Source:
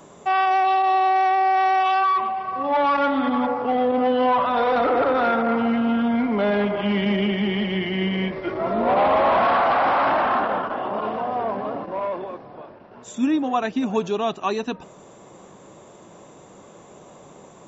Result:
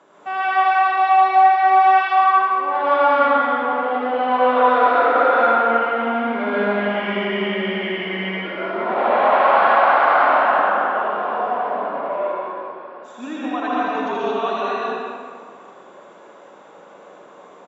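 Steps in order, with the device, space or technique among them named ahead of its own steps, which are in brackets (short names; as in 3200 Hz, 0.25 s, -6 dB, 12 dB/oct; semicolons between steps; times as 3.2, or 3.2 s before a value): station announcement (BPF 350–4200 Hz; bell 1500 Hz +6.5 dB 0.47 oct; loudspeakers at several distances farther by 27 m -4 dB, 68 m -10 dB; reverb RT60 2.0 s, pre-delay 0.12 s, DRR -7 dB); gain -6.5 dB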